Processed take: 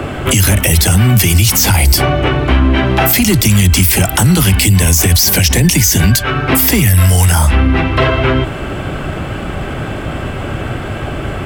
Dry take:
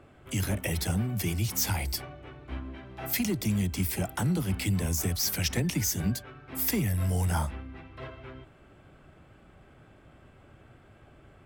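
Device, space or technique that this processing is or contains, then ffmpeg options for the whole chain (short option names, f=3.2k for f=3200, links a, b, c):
mastering chain: -filter_complex "[0:a]asettb=1/sr,asplit=3[a][b][c];[a]atrim=end=4.454[d];[b]atrim=start=4.45:end=6.11,asetpts=PTS-STARTPTS,afade=t=in:d=0.004:c=qsin,afade=t=out:st=1.656:d=0.004:c=qsin,bandreject=f=1.3k:w=9.6[e];[c]atrim=start=6.106[f];[d][e]acrossfade=d=0.004:c1=hsin:c2=qsin[g];[g][f]acrossfade=d=0.004:c1=qsin:c2=hsin,equalizer=f=2.9k:t=o:w=0.23:g=3.5,acrossover=split=89|1000|4700[h][i][j][k];[h]acompressor=threshold=-36dB:ratio=4[l];[i]acompressor=threshold=-41dB:ratio=4[m];[j]acompressor=threshold=-43dB:ratio=4[n];[k]acompressor=threshold=-34dB:ratio=4[o];[l][m][n][o]amix=inputs=4:normalize=0,acompressor=threshold=-43dB:ratio=1.5,asoftclip=type=tanh:threshold=-27dB,alimiter=level_in=35.5dB:limit=-1dB:release=50:level=0:latency=1,volume=-1dB"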